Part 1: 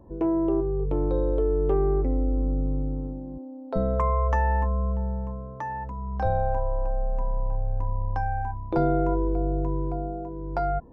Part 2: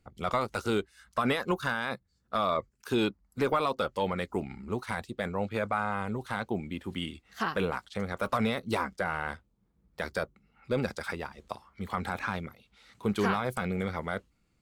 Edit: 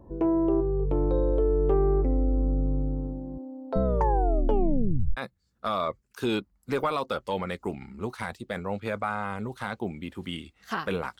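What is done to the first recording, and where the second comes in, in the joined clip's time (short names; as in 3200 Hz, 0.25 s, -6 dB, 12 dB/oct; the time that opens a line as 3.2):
part 1
3.83 tape stop 1.34 s
5.17 switch to part 2 from 1.86 s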